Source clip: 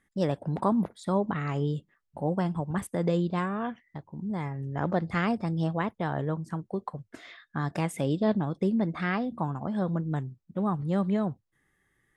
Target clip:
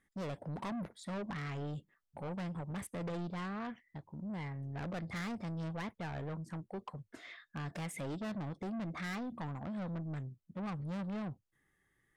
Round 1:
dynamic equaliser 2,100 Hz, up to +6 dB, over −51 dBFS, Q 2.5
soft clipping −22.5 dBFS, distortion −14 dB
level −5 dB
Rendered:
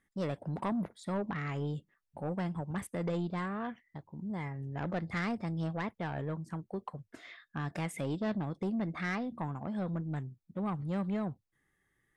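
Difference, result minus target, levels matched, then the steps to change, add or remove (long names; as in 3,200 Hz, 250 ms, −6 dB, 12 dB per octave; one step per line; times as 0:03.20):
soft clipping: distortion −8 dB
change: soft clipping −32 dBFS, distortion −7 dB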